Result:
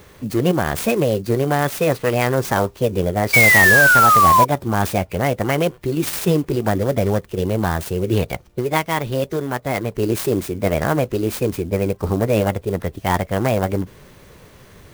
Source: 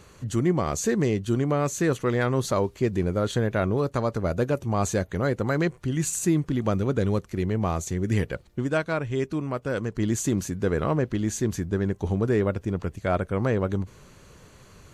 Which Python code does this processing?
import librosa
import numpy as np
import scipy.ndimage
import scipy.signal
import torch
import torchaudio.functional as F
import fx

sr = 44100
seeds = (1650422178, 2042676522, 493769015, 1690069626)

y = fx.formant_shift(x, sr, semitones=6)
y = fx.spec_paint(y, sr, seeds[0], shape='fall', start_s=3.33, length_s=1.12, low_hz=970.0, high_hz=2300.0, level_db=-17.0)
y = fx.clock_jitter(y, sr, seeds[1], jitter_ms=0.027)
y = y * librosa.db_to_amplitude(5.5)